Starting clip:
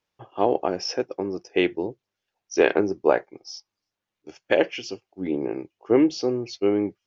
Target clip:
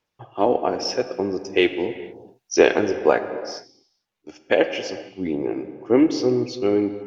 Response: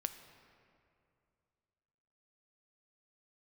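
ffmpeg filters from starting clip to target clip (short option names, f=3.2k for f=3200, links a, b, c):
-filter_complex "[0:a]asettb=1/sr,asplit=3[a][b][c];[a]atrim=end=0.934[d];[b]atrim=start=0.93:end=3.3,asetpts=PTS-STARTPTS,afade=t=in:d=0.004:c=qsin,afade=t=out:st=2.366:d=0.004:c=qsin,highshelf=f=4.1k:g=9[e];[c]atrim=start=3.296[f];[d][e]acrossfade=d=0.004:c1=hsin:c2=qsin[g];[g][f]acrossfade=d=0.004:c1=qsin:c2=hsin,aphaser=in_gain=1:out_gain=1:delay=4.3:decay=0.28:speed=0.78:type=sinusoidal[h];[1:a]atrim=start_sample=2205,afade=t=out:st=0.42:d=0.01,atrim=end_sample=18963,asetrate=34839,aresample=44100[i];[h][i]afir=irnorm=-1:irlink=0,volume=1.5dB"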